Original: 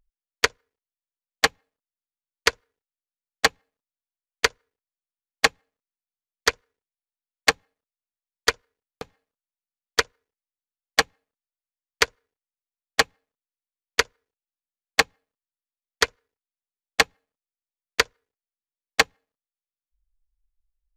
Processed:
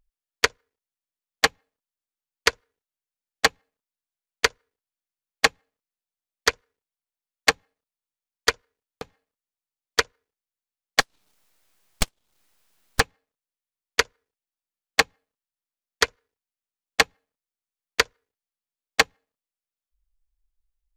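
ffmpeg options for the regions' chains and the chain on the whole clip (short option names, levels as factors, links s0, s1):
-filter_complex "[0:a]asettb=1/sr,asplit=3[s0][s1][s2];[s0]atrim=end=11.004[s3];[s1]atrim=start=11:end=13,asetpts=PTS-STARTPTS,afade=t=in:d=0.004:c=qsin,afade=t=out:st=1.996:d=0.004:c=qsin,highpass=1500,acompressor=mode=upward:threshold=0.01:ratio=2.5:attack=3.2:release=140:knee=2.83:detection=peak,aeval=exprs='abs(val(0))':c=same[s4];[s2]atrim=start=12.996[s5];[s3][s4]acrossfade=d=0.004:c1=hsin:c2=qsin[s6];[s6][s5]acrossfade=d=0.004:c1=qsin:c2=hsin"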